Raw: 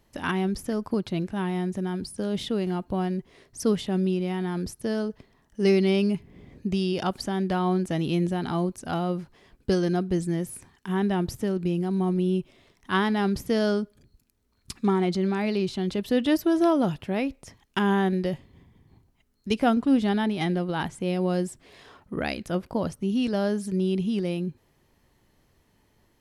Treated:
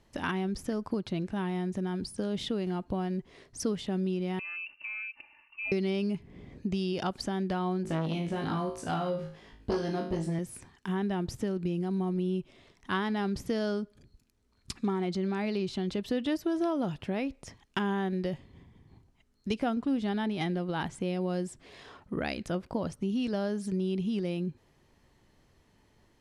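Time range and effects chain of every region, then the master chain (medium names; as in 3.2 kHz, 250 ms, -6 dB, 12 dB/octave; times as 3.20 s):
4.39–5.72 s: frequency inversion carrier 2.8 kHz + comb 3.4 ms, depth 86% + compression 2.5:1, threshold -43 dBFS
7.83–10.39 s: peaking EQ 8.1 kHz -3 dB 1.1 oct + flutter echo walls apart 3.2 m, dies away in 0.39 s + transformer saturation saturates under 600 Hz
whole clip: low-pass 8.8 kHz 12 dB/octave; compression 2.5:1, threshold -30 dBFS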